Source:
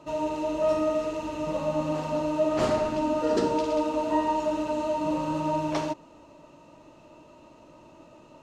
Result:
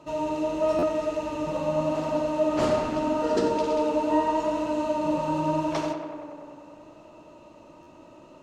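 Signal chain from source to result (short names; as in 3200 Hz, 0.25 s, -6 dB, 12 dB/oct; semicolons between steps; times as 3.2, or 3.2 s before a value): tape echo 95 ms, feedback 86%, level -7 dB, low-pass 3000 Hz; stuck buffer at 0.78/7.82, samples 512, times 3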